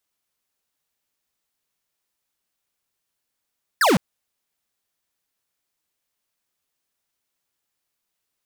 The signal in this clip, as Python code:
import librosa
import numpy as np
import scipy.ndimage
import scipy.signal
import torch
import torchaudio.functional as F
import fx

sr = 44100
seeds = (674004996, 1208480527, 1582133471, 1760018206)

y = fx.laser_zap(sr, level_db=-16, start_hz=1900.0, end_hz=150.0, length_s=0.16, wave='square')